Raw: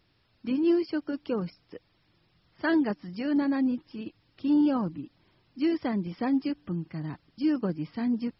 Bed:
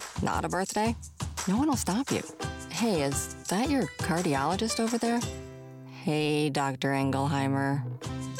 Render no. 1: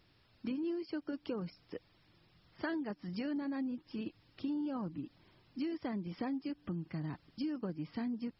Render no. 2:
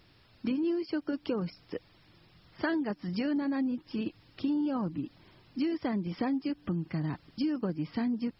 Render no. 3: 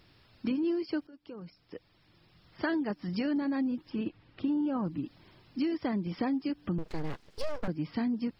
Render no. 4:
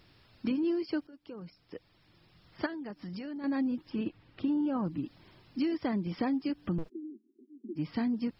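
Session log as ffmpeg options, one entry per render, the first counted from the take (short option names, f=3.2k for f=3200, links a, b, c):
-af "acompressor=threshold=-36dB:ratio=6"
-af "volume=7dB"
-filter_complex "[0:a]asettb=1/sr,asplit=3[a][b][c];[a]atrim=end=3.904[d];[b]atrim=start=3.9:end=4.85,asetpts=PTS-STARTPTS,afade=t=in:d=0.004:c=qsin,afade=t=out:st=0.946:d=0.004:c=qsin,lowpass=2.8k[e];[c]atrim=start=4.846[f];[d][e]acrossfade=d=0.004:c1=hsin:c2=qsin[g];[g][f]acrossfade=d=0.004:c1=qsin:c2=hsin,asettb=1/sr,asplit=3[h][i][j];[h]atrim=end=6.784[k];[i]atrim=start=6.78:end=7.68,asetpts=PTS-STARTPTS,afade=t=in:d=0.004:c=qsin,afade=t=out:st=0.896:d=0.004:c=qsin,aeval=exprs='abs(val(0))':c=same[l];[j]atrim=start=7.676[m];[k][l]acrossfade=d=0.004:c1=hsin:c2=qsin[n];[n][m]acrossfade=d=0.004:c1=qsin:c2=hsin,asplit=2[o][p];[o]atrim=end=1.07,asetpts=PTS-STARTPTS,afade=t=out:st=1.066:d=0.004:c=hsin:silence=0.0749894[q];[p]atrim=start=1.07,asetpts=PTS-STARTPTS,afade=t=in:d=1.69:silence=0.0749894[r];[q][r]concat=n=2:v=0:a=1"
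-filter_complex "[0:a]asettb=1/sr,asplit=3[a][b][c];[a]atrim=end=2.664[d];[b]atrim=start=2.66:end=3.44,asetpts=PTS-STARTPTS,afade=t=in:d=0.004:c=qsin,afade=t=out:st=0.776:d=0.004:c=qsin,acompressor=threshold=-38dB:ratio=5:attack=3.2:release=140:knee=1:detection=peak[e];[c]atrim=start=3.436[f];[d][e]acrossfade=d=0.004:c1=hsin:c2=qsin[g];[g][f]acrossfade=d=0.004:c1=qsin:c2=hsin,asplit=3[h][i][j];[h]afade=t=out:st=6.88:d=0.02[k];[i]asuperpass=centerf=290:order=20:qfactor=1.6,afade=t=in:st=6.88:d=0.02,afade=t=out:st=7.75:d=0.02[l];[j]afade=t=in:st=7.75:d=0.02[m];[k][l][m]amix=inputs=3:normalize=0"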